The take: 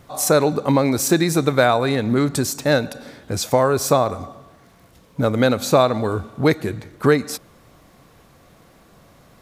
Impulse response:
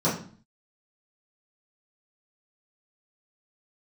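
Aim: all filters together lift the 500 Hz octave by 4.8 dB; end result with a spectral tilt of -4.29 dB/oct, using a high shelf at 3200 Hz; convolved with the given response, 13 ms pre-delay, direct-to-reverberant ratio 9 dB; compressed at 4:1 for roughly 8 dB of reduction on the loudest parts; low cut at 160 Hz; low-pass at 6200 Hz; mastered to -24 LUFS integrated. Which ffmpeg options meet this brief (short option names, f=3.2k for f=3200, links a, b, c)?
-filter_complex "[0:a]highpass=160,lowpass=6.2k,equalizer=f=500:t=o:g=5.5,highshelf=f=3.2k:g=8.5,acompressor=threshold=-16dB:ratio=4,asplit=2[a][b];[1:a]atrim=start_sample=2205,adelay=13[c];[b][c]afir=irnorm=-1:irlink=0,volume=-22.5dB[d];[a][d]amix=inputs=2:normalize=0,volume=-4dB"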